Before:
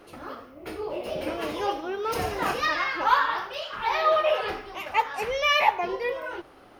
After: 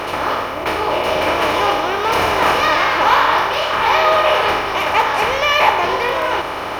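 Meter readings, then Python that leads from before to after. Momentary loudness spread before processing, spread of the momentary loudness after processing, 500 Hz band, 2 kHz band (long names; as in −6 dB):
15 LU, 7 LU, +10.0 dB, +11.0 dB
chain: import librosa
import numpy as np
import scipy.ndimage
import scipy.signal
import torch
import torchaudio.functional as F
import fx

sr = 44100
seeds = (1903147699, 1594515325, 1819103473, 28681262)

y = fx.bin_compress(x, sr, power=0.4)
y = F.gain(torch.from_numpy(y), 3.5).numpy()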